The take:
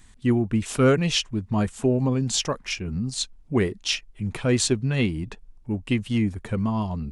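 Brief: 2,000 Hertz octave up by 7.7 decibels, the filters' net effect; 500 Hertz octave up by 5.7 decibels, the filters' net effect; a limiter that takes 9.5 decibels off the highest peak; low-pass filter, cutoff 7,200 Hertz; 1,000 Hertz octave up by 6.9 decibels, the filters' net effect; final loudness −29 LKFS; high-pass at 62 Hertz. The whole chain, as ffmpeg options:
ffmpeg -i in.wav -af "highpass=62,lowpass=7200,equalizer=frequency=500:width_type=o:gain=6,equalizer=frequency=1000:width_type=o:gain=4.5,equalizer=frequency=2000:width_type=o:gain=8.5,volume=-4.5dB,alimiter=limit=-17.5dB:level=0:latency=1" out.wav

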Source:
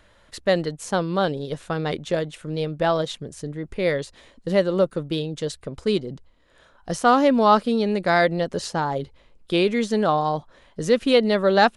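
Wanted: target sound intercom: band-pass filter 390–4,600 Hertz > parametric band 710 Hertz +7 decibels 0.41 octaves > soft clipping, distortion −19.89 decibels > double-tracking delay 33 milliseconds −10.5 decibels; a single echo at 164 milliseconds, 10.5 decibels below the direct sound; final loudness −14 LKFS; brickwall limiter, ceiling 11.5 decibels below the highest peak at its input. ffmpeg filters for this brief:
ffmpeg -i in.wav -filter_complex "[0:a]alimiter=limit=-15.5dB:level=0:latency=1,highpass=390,lowpass=4600,equalizer=frequency=710:width_type=o:width=0.41:gain=7,aecho=1:1:164:0.299,asoftclip=threshold=-14.5dB,asplit=2[link_01][link_02];[link_02]adelay=33,volume=-10.5dB[link_03];[link_01][link_03]amix=inputs=2:normalize=0,volume=13dB" out.wav

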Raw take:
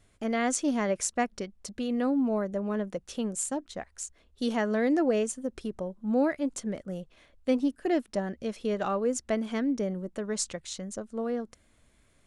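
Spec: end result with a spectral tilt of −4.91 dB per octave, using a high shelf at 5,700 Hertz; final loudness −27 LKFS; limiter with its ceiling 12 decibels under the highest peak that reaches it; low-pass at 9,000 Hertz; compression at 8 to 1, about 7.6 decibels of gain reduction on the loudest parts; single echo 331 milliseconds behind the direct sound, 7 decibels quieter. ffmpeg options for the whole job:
ffmpeg -i in.wav -af "lowpass=9000,highshelf=frequency=5700:gain=-7.5,acompressor=threshold=-29dB:ratio=8,alimiter=level_in=6.5dB:limit=-24dB:level=0:latency=1,volume=-6.5dB,aecho=1:1:331:0.447,volume=12dB" out.wav

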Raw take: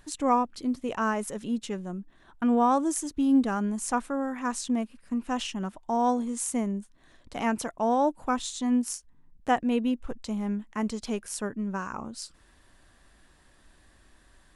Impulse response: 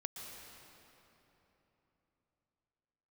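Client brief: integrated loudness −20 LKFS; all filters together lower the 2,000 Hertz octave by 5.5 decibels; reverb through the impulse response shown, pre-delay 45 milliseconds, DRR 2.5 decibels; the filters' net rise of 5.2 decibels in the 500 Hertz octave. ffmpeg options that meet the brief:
-filter_complex "[0:a]equalizer=frequency=500:width_type=o:gain=6.5,equalizer=frequency=2000:width_type=o:gain=-8.5,asplit=2[link_01][link_02];[1:a]atrim=start_sample=2205,adelay=45[link_03];[link_02][link_03]afir=irnorm=-1:irlink=0,volume=-1dB[link_04];[link_01][link_04]amix=inputs=2:normalize=0,volume=5dB"

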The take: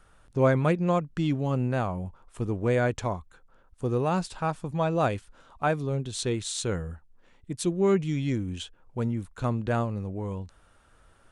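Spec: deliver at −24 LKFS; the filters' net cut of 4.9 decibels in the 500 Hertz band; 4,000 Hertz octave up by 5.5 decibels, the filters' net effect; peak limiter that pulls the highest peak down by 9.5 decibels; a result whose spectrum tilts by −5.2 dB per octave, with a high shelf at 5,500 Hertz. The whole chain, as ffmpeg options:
ffmpeg -i in.wav -af "equalizer=frequency=500:width_type=o:gain=-6.5,equalizer=frequency=4000:width_type=o:gain=4,highshelf=frequency=5500:gain=6.5,volume=7.5dB,alimiter=limit=-12dB:level=0:latency=1" out.wav

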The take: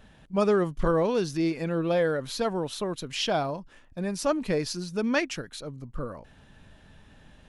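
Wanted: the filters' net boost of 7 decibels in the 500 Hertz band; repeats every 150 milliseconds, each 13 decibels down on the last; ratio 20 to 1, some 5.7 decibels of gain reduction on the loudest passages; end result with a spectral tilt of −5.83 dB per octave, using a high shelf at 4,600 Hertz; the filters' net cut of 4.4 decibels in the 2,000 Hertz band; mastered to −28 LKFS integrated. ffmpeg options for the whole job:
ffmpeg -i in.wav -af "equalizer=frequency=500:width_type=o:gain=8.5,equalizer=frequency=2000:width_type=o:gain=-5,highshelf=frequency=4600:gain=-7.5,acompressor=threshold=-19dB:ratio=20,aecho=1:1:150|300|450:0.224|0.0493|0.0108,volume=-1.5dB" out.wav

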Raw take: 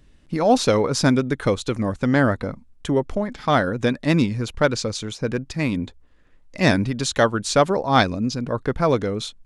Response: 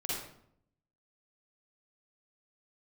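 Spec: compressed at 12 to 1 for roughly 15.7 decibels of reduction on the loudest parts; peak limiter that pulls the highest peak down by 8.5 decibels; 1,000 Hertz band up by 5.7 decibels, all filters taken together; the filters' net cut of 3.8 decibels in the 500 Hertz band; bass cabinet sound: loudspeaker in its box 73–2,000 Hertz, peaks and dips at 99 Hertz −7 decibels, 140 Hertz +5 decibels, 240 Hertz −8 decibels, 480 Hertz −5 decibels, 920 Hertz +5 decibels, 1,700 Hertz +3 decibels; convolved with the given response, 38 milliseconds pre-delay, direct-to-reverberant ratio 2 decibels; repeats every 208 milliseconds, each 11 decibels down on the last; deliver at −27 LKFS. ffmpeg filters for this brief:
-filter_complex "[0:a]equalizer=frequency=500:width_type=o:gain=-4.5,equalizer=frequency=1000:width_type=o:gain=6.5,acompressor=threshold=-25dB:ratio=12,alimiter=limit=-22dB:level=0:latency=1,aecho=1:1:208|416|624:0.282|0.0789|0.0221,asplit=2[link_01][link_02];[1:a]atrim=start_sample=2205,adelay=38[link_03];[link_02][link_03]afir=irnorm=-1:irlink=0,volume=-6dB[link_04];[link_01][link_04]amix=inputs=2:normalize=0,highpass=frequency=73:width=0.5412,highpass=frequency=73:width=1.3066,equalizer=frequency=99:width_type=q:width=4:gain=-7,equalizer=frequency=140:width_type=q:width=4:gain=5,equalizer=frequency=240:width_type=q:width=4:gain=-8,equalizer=frequency=480:width_type=q:width=4:gain=-5,equalizer=frequency=920:width_type=q:width=4:gain=5,equalizer=frequency=1700:width_type=q:width=4:gain=3,lowpass=frequency=2000:width=0.5412,lowpass=frequency=2000:width=1.3066,volume=4.5dB"

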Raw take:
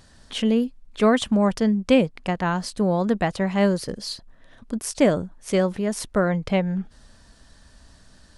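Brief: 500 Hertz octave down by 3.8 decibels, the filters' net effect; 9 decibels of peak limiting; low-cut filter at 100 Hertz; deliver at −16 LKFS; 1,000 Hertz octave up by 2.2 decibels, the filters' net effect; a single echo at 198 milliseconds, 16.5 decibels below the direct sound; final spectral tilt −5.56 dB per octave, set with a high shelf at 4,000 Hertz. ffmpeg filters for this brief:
ffmpeg -i in.wav -af "highpass=100,equalizer=frequency=500:width_type=o:gain=-6,equalizer=frequency=1000:width_type=o:gain=5.5,highshelf=frequency=4000:gain=-7.5,alimiter=limit=-16.5dB:level=0:latency=1,aecho=1:1:198:0.15,volume=11dB" out.wav

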